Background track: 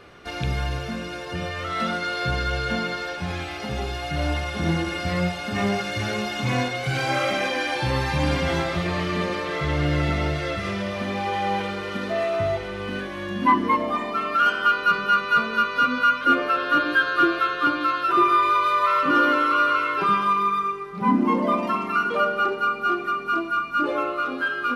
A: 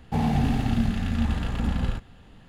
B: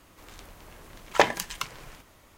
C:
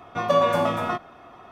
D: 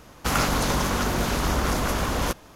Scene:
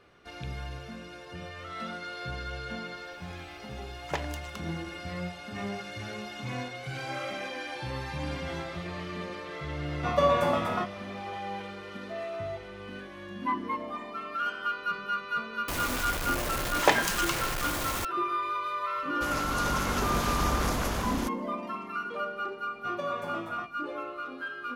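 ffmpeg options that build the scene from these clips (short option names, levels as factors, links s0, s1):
-filter_complex "[2:a]asplit=2[s0][s1];[3:a]asplit=2[s2][s3];[0:a]volume=0.251[s4];[s1]aeval=exprs='val(0)+0.5*0.0668*sgn(val(0))':c=same[s5];[4:a]dynaudnorm=f=120:g=9:m=3.76[s6];[s0]atrim=end=2.37,asetpts=PTS-STARTPTS,volume=0.211,afade=t=in:d=0.004:c=hsin,afade=t=out:st=2.366:d=0.004:c=hsin,adelay=2940[s7];[s2]atrim=end=1.51,asetpts=PTS-STARTPTS,volume=0.631,afade=t=in:d=0.004:c=hsin,afade=t=out:st=1.506:d=0.004:c=hsin,adelay=9880[s8];[s5]atrim=end=2.37,asetpts=PTS-STARTPTS,volume=0.668,afade=t=in:d=0.004:c=hsin,afade=t=out:st=2.366:d=0.004:c=hsin,adelay=15680[s9];[s6]atrim=end=2.55,asetpts=PTS-STARTPTS,volume=0.211,afade=t=in:d=0.004:c=hsin,afade=t=out:st=2.546:d=0.004:c=hsin,adelay=18960[s10];[s3]atrim=end=1.51,asetpts=PTS-STARTPTS,volume=0.178,afade=t=in:d=0.004:c=hsin,afade=t=out:st=1.506:d=0.004:c=hsin,adelay=22690[s11];[s4][s7][s8][s9][s10][s11]amix=inputs=6:normalize=0"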